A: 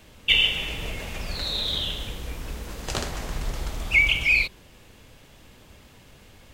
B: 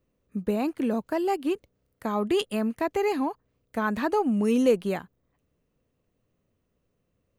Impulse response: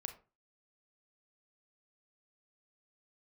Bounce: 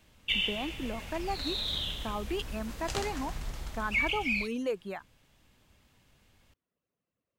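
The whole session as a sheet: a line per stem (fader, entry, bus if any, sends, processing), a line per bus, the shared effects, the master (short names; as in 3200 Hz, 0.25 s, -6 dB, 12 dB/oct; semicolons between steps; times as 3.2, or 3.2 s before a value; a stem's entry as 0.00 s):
-9.5 dB, 0.00 s, no send, vocal rider within 4 dB 2 s
-4.5 dB, 0.00 s, no send, reverb removal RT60 1 s; HPF 340 Hz 6 dB/oct; high shelf 5800 Hz -10.5 dB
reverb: off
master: bell 460 Hz -4.5 dB 0.89 oct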